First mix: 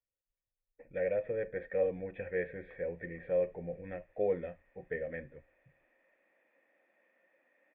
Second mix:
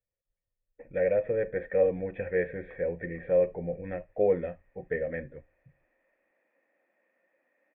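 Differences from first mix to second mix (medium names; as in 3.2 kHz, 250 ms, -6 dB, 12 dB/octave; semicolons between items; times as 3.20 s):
speech +7.5 dB; master: add distance through air 270 m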